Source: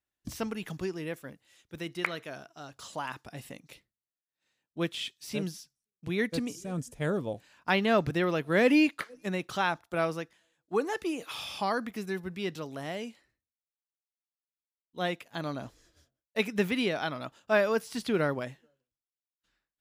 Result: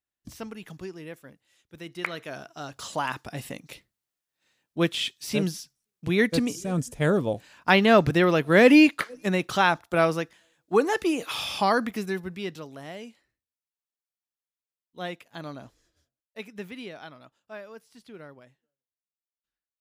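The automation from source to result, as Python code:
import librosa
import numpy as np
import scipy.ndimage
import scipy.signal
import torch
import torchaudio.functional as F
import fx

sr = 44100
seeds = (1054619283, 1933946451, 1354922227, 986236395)

y = fx.gain(x, sr, db=fx.line((1.76, -4.0), (2.55, 7.5), (11.84, 7.5), (12.76, -3.0), (15.47, -3.0), (16.4, -10.5), (17.05, -10.5), (17.62, -17.0)))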